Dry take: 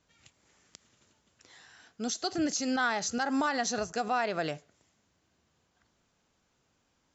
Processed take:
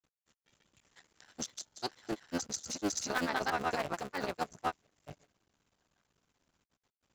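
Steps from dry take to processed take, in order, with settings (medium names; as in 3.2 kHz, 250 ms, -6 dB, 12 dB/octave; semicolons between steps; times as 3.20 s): cycle switcher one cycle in 3, muted; granulator, grains 16 per s, spray 688 ms, pitch spread up and down by 0 st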